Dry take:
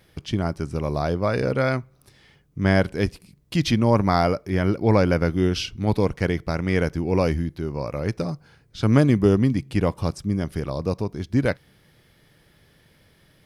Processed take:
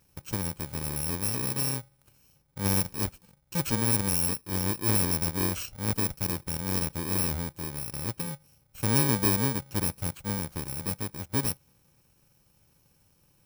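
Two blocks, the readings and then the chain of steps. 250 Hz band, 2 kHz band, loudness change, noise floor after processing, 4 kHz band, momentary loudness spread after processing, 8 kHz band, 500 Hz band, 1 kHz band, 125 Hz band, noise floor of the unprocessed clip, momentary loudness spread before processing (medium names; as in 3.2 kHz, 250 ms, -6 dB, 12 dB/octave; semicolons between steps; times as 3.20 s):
-10.0 dB, -8.0 dB, -5.0 dB, -66 dBFS, -2.0 dB, 10 LU, +13.0 dB, -14.5 dB, -9.5 dB, -8.5 dB, -59 dBFS, 9 LU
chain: bit-reversed sample order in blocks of 64 samples; trim -7.5 dB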